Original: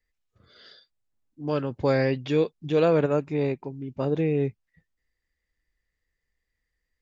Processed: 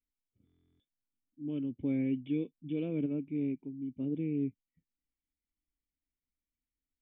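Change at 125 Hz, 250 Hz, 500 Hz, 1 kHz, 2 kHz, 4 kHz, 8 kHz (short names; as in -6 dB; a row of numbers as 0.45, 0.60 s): -11.5 dB, -4.0 dB, -19.0 dB, under -25 dB, -19.5 dB, under -15 dB, n/a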